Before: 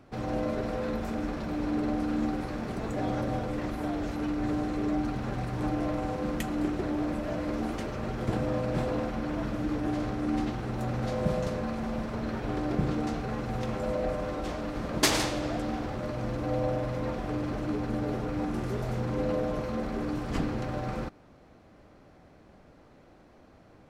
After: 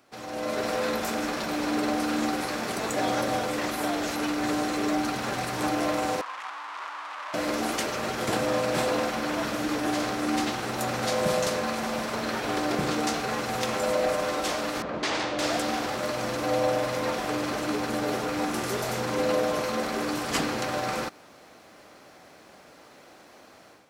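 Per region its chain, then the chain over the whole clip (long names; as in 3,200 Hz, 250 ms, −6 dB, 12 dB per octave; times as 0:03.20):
0:06.21–0:07.34: sign of each sample alone + four-pole ladder band-pass 1,200 Hz, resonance 55%
0:14.82–0:15.39: downward compressor 1.5 to 1, threshold −29 dBFS + hard clipping −26 dBFS + head-to-tape spacing loss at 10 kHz 32 dB
whole clip: high-pass filter 700 Hz 6 dB per octave; high-shelf EQ 4,200 Hz +11 dB; automatic gain control gain up to 10.5 dB; level −1 dB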